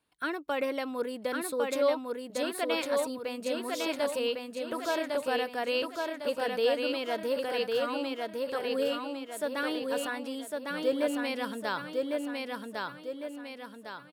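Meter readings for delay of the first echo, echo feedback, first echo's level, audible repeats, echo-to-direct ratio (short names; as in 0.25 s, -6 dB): 1.104 s, 46%, -3.0 dB, 5, -2.0 dB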